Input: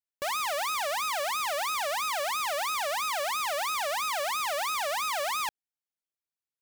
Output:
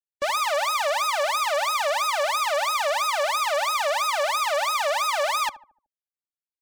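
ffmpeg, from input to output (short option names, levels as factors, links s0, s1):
-filter_complex "[0:a]afftdn=nr=27:nf=-44,aecho=1:1:3.4:0.51,asplit=2[s0][s1];[s1]adelay=74,lowpass=f=860:p=1,volume=0.224,asplit=2[s2][s3];[s3]adelay=74,lowpass=f=860:p=1,volume=0.5,asplit=2[s4][s5];[s5]adelay=74,lowpass=f=860:p=1,volume=0.5,asplit=2[s6][s7];[s7]adelay=74,lowpass=f=860:p=1,volume=0.5,asplit=2[s8][s9];[s9]adelay=74,lowpass=f=860:p=1,volume=0.5[s10];[s0][s2][s4][s6][s8][s10]amix=inputs=6:normalize=0,volume=1.78"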